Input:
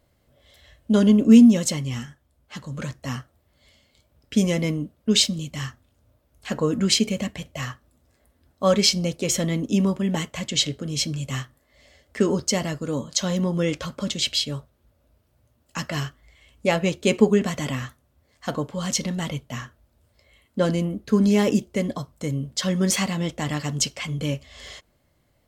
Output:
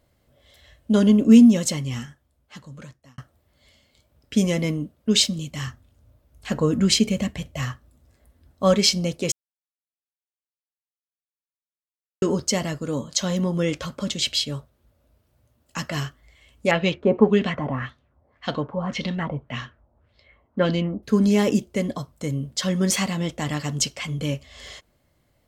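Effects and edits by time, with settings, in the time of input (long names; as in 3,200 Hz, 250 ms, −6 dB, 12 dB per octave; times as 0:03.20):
0:02.04–0:03.18: fade out
0:05.67–0:08.74: low-shelf EQ 140 Hz +8.5 dB
0:09.32–0:12.22: silence
0:16.71–0:21.03: auto-filter low-pass sine 1.8 Hz 790–4,000 Hz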